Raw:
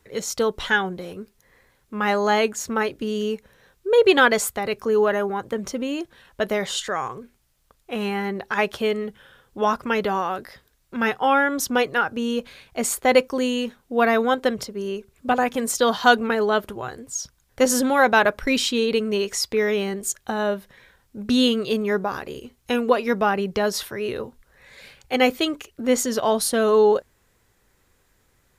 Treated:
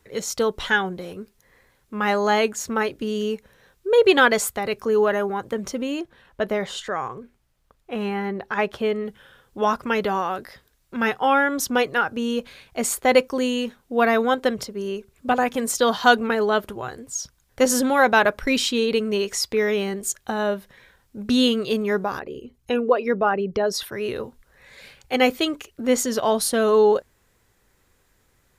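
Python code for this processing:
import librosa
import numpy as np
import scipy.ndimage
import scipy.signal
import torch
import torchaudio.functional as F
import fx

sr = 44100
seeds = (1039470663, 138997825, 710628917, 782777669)

y = fx.high_shelf(x, sr, hz=3200.0, db=-9.5, at=(6.0, 9.06))
y = fx.envelope_sharpen(y, sr, power=1.5, at=(22.19, 23.92))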